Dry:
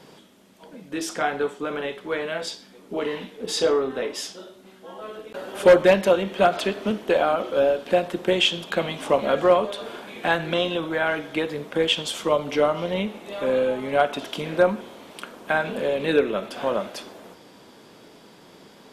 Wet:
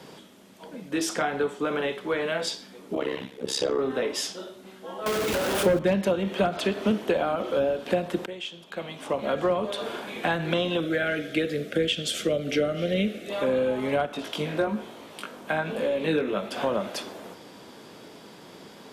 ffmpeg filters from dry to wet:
ffmpeg -i in.wav -filter_complex "[0:a]asettb=1/sr,asplit=3[link_01][link_02][link_03];[link_01]atrim=end=2.954[link_04];[link_02]atrim=start=2.95:end=3.79,asetpts=PTS-STARTPTS,afade=type=in:duration=0.004:curve=qsin,afade=type=out:start_time=0.836:duration=0.004:curve=qsin,tremolo=f=67:d=0.889[link_05];[link_03]atrim=start=3.786[link_06];[link_04][link_05]acrossfade=duration=0.004:curve1=hsin:curve2=qsin[link_07];[link_07][link_06]acrossfade=duration=0.004:curve1=qsin:curve2=hsin,asettb=1/sr,asplit=3[link_08][link_09][link_10];[link_08]atrim=end=5.064[link_11];[link_09]atrim=start=5.06:end=5.79,asetpts=PTS-STARTPTS,afade=type=in:duration=0.004:curve=qsin,afade=type=out:start_time=0.726:duration=0.004:curve=qsin,aeval=exprs='val(0)+0.5*0.0794*sgn(val(0))':channel_layout=same[link_12];[link_10]atrim=start=5.786[link_13];[link_11][link_12]acrossfade=duration=0.004:curve1=hsin:curve2=qsin[link_14];[link_14][link_13]acrossfade=duration=0.004:curve1=qsin:curve2=hsin,asettb=1/sr,asplit=3[link_15][link_16][link_17];[link_15]atrim=end=10.804[link_18];[link_16]atrim=start=10.8:end=13.3,asetpts=PTS-STARTPTS,afade=type=in:duration=0.004:curve=qsin,afade=type=out:start_time=2.496:duration=0.004:curve=qsin,asuperstop=centerf=950:order=4:qfactor=1.3[link_19];[link_17]atrim=start=13.296[link_20];[link_18][link_19]acrossfade=duration=0.004:curve1=hsin:curve2=qsin[link_21];[link_21][link_20]acrossfade=duration=0.004:curve1=qsin:curve2=hsin,asettb=1/sr,asplit=3[link_22][link_23][link_24];[link_22]atrim=end=14.064[link_25];[link_23]atrim=start=14.06:end=16.52,asetpts=PTS-STARTPTS,afade=type=in:duration=0.004:curve=qsin,afade=type=out:start_time=2.456:duration=0.004:curve=qsin,flanger=delay=17.5:depth=2.6:speed=1.1[link_26];[link_24]atrim=start=16.516[link_27];[link_25][link_26]acrossfade=duration=0.004:curve1=hsin:curve2=qsin[link_28];[link_28][link_27]acrossfade=duration=0.004:curve1=qsin:curve2=hsin,asplit=2[link_29][link_30];[link_29]atrim=end=8.26,asetpts=PTS-STARTPTS,afade=type=out:start_time=8.256:duration=0.004:curve=hsin:silence=0.105925[link_31];[link_30]atrim=start=8.26,asetpts=PTS-STARTPTS,afade=type=in:duration=1.43:curve=qua:silence=0.105925[link_32];[link_31][link_32]concat=n=2:v=0:a=1,acrossover=split=260[link_33][link_34];[link_34]acompressor=threshold=-26dB:ratio=5[link_35];[link_33][link_35]amix=inputs=2:normalize=0,highpass=49,volume=2.5dB" out.wav

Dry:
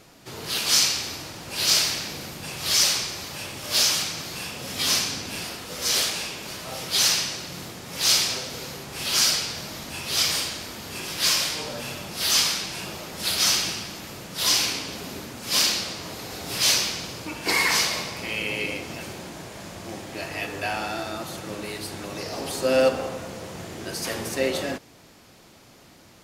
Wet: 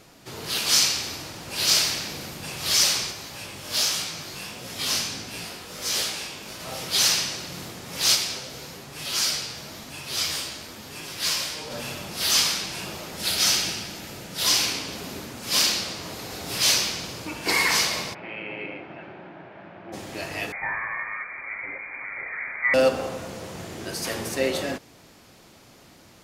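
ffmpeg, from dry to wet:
ffmpeg -i in.wav -filter_complex "[0:a]asplit=3[link_01][link_02][link_03];[link_01]afade=type=out:start_time=3.11:duration=0.02[link_04];[link_02]flanger=delay=17:depth=4.2:speed=1.5,afade=type=in:start_time=3.11:duration=0.02,afade=type=out:start_time=6.59:duration=0.02[link_05];[link_03]afade=type=in:start_time=6.59:duration=0.02[link_06];[link_04][link_05][link_06]amix=inputs=3:normalize=0,asplit=3[link_07][link_08][link_09];[link_07]afade=type=out:start_time=8.14:duration=0.02[link_10];[link_08]flanger=delay=6.6:depth=8.8:regen=48:speed=1:shape=sinusoidal,afade=type=in:start_time=8.14:duration=0.02,afade=type=out:start_time=11.7:duration=0.02[link_11];[link_09]afade=type=in:start_time=11.7:duration=0.02[link_12];[link_10][link_11][link_12]amix=inputs=3:normalize=0,asettb=1/sr,asplit=3[link_13][link_14][link_15];[link_13]atrim=end=13.164[link_16];[link_14]atrim=start=13.16:end=14.45,asetpts=PTS-STARTPTS,afade=type=in:duration=0.004:curve=qsin,afade=type=out:start_time=1.286:duration=0.004:curve=qsin,bandreject=frequency=1100:width=7.7[link_17];[link_15]atrim=start=14.446[link_18];[link_16][link_17]acrossfade=duration=0.004:curve1=hsin:curve2=qsin[link_19];[link_19][link_18]acrossfade=duration=0.004:curve1=qsin:curve2=hsin,asplit=3[link_20][link_21][link_22];[link_20]afade=type=out:start_time=18.13:duration=0.02[link_23];[link_21]highpass=200,equalizer=frequency=240:width_type=q:width=4:gain=-8,equalizer=frequency=470:width_type=q:width=4:gain=-8,equalizer=frequency=1100:width_type=q:width=4:gain=-6,equalizer=frequency=2000:width_type=q:width=4:gain=-4,lowpass=frequency=2200:width=0.5412,lowpass=frequency=2200:width=1.3066,afade=type=in:start_time=18.13:duration=0.02,afade=type=out:start_time=19.92:duration=0.02[link_24];[link_22]afade=type=in:start_time=19.92:duration=0.02[link_25];[link_23][link_24][link_25]amix=inputs=3:normalize=0,asettb=1/sr,asplit=3[link_26][link_27][link_28];[link_26]atrim=end=20.524[link_29];[link_27]atrim=start=20.52:end=22.74,asetpts=PTS-STARTPTS,afade=type=in:duration=0.004:curve=qsin,afade=type=out:start_time=2.216:duration=0.004:curve=qsin,lowpass=frequency=2100:width_type=q:width=0.5098,lowpass=frequency=2100:width_type=q:width=0.6013,lowpass=frequency=2100:width_type=q:width=0.9,lowpass=frequency=2100:width_type=q:width=2.563,afreqshift=-2500[link_30];[link_28]atrim=start=22.736[link_31];[link_29][link_30]acrossfade=duration=0.004:curve1=hsin:curve2=qsin[link_32];[link_32][link_31]acrossfade=duration=0.004:curve1=qsin:curve2=hsin" out.wav

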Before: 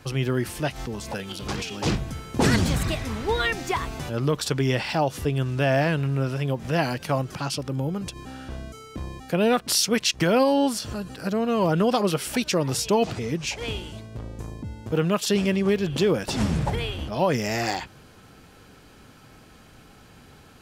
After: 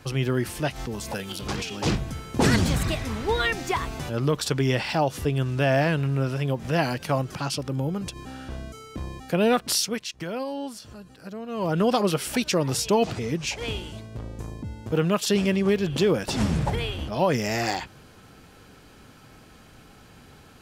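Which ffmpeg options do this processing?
ffmpeg -i in.wav -filter_complex "[0:a]asettb=1/sr,asplit=3[link_01][link_02][link_03];[link_01]atrim=end=0.914[link_04];[link_02]atrim=start=0.91:end=1.41,asetpts=PTS-STARTPTS,afade=type=in:duration=0.004:curve=qsin,afade=type=out:start_time=0.496:duration=0.004:curve=qsin,highshelf=frequency=10000:gain=9[link_05];[link_03]atrim=start=1.406[link_06];[link_04][link_05]acrossfade=duration=0.004:curve1=hsin:curve2=qsin[link_07];[link_07][link_06]acrossfade=duration=0.004:curve1=qsin:curve2=hsin,asplit=3[link_08][link_09][link_10];[link_08]atrim=end=10.04,asetpts=PTS-STARTPTS,afade=type=out:start_time=9.66:duration=0.38:silence=0.266073[link_11];[link_09]atrim=start=10.04:end=11.48,asetpts=PTS-STARTPTS,volume=-11.5dB[link_12];[link_10]atrim=start=11.48,asetpts=PTS-STARTPTS,afade=type=in:duration=0.38:silence=0.266073[link_13];[link_11][link_12][link_13]concat=n=3:v=0:a=1" out.wav

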